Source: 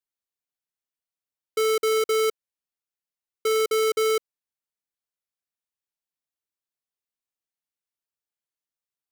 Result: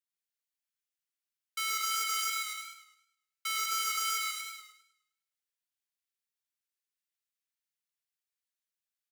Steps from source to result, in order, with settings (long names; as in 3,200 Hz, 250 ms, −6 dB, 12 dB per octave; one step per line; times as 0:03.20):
high-pass filter 1,400 Hz 24 dB per octave
on a send: bouncing-ball delay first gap 130 ms, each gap 0.8×, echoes 5
on the sum: feedback echo with a swinging delay time 104 ms, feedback 40%, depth 60 cents, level −8 dB
level −3 dB